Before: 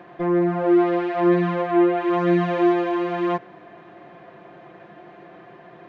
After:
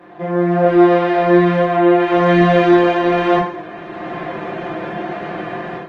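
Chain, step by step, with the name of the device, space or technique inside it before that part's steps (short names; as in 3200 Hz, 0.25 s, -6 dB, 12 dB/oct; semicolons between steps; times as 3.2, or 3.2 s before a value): far-field microphone of a smart speaker (reverb RT60 0.50 s, pre-delay 13 ms, DRR -5.5 dB; HPF 130 Hz 12 dB/oct; AGC gain up to 15 dB; gain -1 dB; Opus 20 kbps 48000 Hz)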